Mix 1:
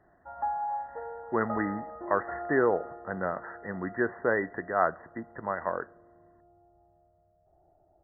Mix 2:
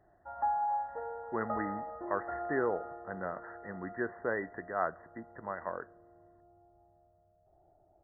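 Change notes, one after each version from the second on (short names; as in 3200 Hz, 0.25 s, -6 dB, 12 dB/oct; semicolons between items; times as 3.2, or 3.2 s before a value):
speech -7.0 dB; background: send -10.0 dB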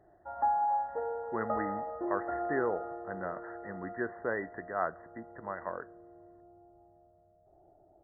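background: add bell 350 Hz +7.5 dB 1.9 oct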